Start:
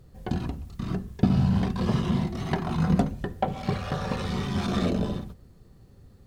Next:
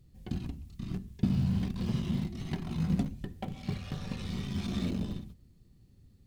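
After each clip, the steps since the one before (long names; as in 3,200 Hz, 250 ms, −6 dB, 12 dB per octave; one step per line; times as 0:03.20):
flat-topped bell 830 Hz −10 dB 2.3 octaves
in parallel at −11.5 dB: comparator with hysteresis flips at −24.5 dBFS
on the sum: level −7 dB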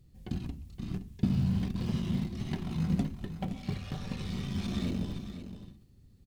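single-tap delay 518 ms −11 dB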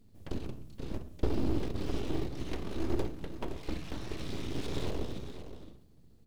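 full-wave rectification
on a send at −13 dB: convolution reverb RT60 0.60 s, pre-delay 31 ms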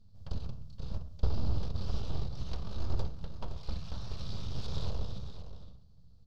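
drawn EQ curve 100 Hz 0 dB, 200 Hz −6 dB, 310 Hz −22 dB, 510 Hz −9 dB, 1,300 Hz −6 dB, 2,000 Hz −18 dB, 4,700 Hz 0 dB, 9,300 Hz −19 dB
level +3.5 dB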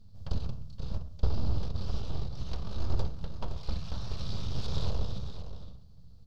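speech leveller within 4 dB 2 s
level +2 dB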